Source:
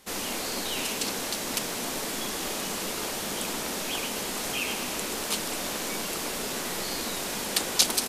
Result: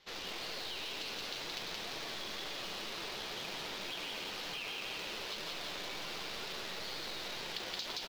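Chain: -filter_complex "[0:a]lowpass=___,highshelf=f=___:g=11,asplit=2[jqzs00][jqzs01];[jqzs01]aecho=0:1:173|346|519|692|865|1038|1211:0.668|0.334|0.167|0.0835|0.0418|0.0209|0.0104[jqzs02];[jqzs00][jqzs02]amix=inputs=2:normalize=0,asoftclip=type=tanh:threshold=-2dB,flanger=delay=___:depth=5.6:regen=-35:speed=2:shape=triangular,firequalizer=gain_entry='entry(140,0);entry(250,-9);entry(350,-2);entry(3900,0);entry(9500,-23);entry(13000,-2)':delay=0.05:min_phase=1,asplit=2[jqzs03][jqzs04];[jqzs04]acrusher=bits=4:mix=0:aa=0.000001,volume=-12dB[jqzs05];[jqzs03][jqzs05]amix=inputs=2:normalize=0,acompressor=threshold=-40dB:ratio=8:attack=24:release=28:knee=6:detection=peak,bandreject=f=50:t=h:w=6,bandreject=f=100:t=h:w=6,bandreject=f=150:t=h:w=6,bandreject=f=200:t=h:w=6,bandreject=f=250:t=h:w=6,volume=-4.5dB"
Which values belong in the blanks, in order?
5k, 3.3k, 5.7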